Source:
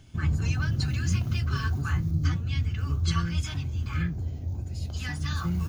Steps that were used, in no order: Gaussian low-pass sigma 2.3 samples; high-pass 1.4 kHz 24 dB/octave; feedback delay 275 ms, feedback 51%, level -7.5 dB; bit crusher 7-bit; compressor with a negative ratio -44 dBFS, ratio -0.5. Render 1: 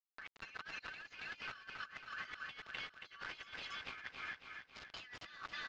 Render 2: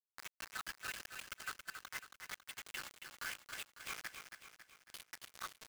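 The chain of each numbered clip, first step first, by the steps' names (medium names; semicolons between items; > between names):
high-pass > bit crusher > feedback delay > compressor with a negative ratio > Gaussian low-pass; high-pass > compressor with a negative ratio > Gaussian low-pass > bit crusher > feedback delay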